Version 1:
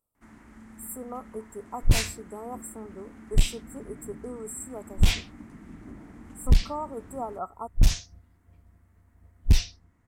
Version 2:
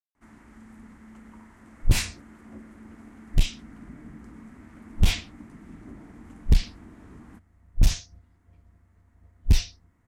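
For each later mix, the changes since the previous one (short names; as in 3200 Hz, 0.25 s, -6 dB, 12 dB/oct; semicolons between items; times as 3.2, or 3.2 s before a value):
speech: muted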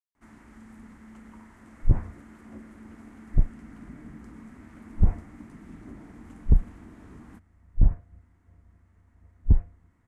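second sound: add Gaussian blur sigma 8.1 samples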